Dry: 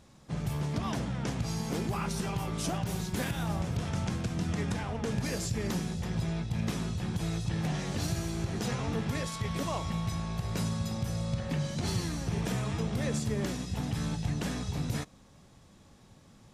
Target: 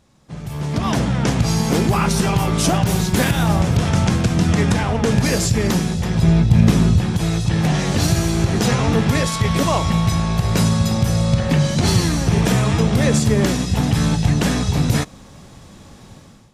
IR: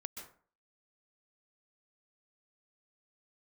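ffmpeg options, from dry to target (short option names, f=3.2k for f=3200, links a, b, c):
-filter_complex "[0:a]asettb=1/sr,asplit=3[a][b][c];[a]atrim=end=6.234[d];[b]atrim=start=6.23:end=7.01,asetpts=PTS-STARTPTS,afade=t=in:d=0.004:c=qsin,afade=t=out:st=0.776:d=0.004:c=qsin,lowshelf=f=390:g=8[e];[c]atrim=start=7.006[f];[d][e]acrossfade=d=0.004:c1=hsin:c2=qsin[g];[g][f]acrossfade=d=0.004:c1=qsin:c2=hsin,dynaudnorm=f=490:g=3:m=16dB"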